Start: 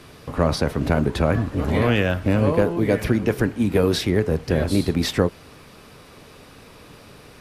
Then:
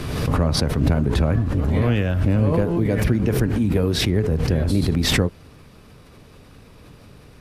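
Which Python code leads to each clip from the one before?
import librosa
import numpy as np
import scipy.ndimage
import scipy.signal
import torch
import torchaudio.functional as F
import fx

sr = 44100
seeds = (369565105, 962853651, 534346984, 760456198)

y = fx.low_shelf(x, sr, hz=220.0, db=11.5)
y = fx.pre_swell(y, sr, db_per_s=33.0)
y = F.gain(torch.from_numpy(y), -6.5).numpy()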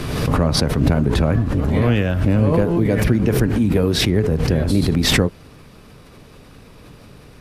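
y = fx.peak_eq(x, sr, hz=80.0, db=-4.0, octaves=0.71)
y = F.gain(torch.from_numpy(y), 3.5).numpy()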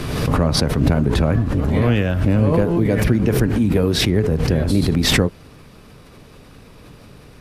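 y = x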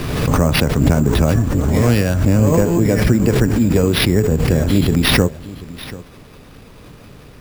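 y = x + 10.0 ** (-18.0 / 20.0) * np.pad(x, (int(737 * sr / 1000.0), 0))[:len(x)]
y = np.repeat(y[::6], 6)[:len(y)]
y = F.gain(torch.from_numpy(y), 2.5).numpy()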